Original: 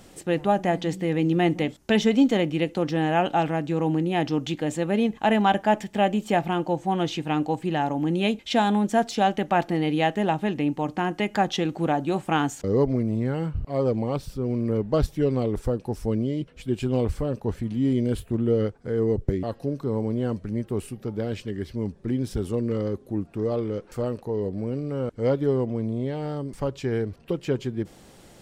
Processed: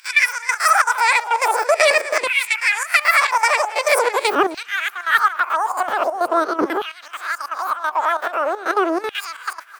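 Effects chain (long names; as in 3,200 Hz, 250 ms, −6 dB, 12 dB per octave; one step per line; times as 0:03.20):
peak hold with a rise ahead of every peak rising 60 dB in 0.87 s
noise gate with hold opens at −24 dBFS
upward compression, threshold −22 dBFS
gate pattern ".x.xxxx..x.xxxx" 95 BPM −12 dB
change of speed 2.9×
repeating echo 261 ms, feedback 59%, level −23.5 dB
auto-filter high-pass saw down 0.44 Hz 290–2,800 Hz
level +3 dB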